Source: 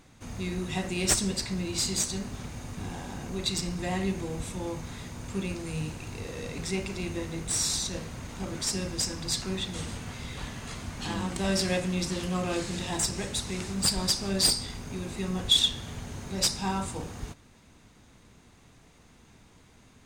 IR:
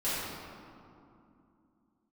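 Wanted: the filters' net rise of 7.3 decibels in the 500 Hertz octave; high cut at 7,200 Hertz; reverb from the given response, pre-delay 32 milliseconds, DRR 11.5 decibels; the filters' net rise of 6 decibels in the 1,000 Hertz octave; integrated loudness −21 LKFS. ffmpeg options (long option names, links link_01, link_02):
-filter_complex "[0:a]lowpass=7200,equalizer=frequency=500:width_type=o:gain=8.5,equalizer=frequency=1000:width_type=o:gain=4.5,asplit=2[link_01][link_02];[1:a]atrim=start_sample=2205,adelay=32[link_03];[link_02][link_03]afir=irnorm=-1:irlink=0,volume=-20.5dB[link_04];[link_01][link_04]amix=inputs=2:normalize=0,volume=7.5dB"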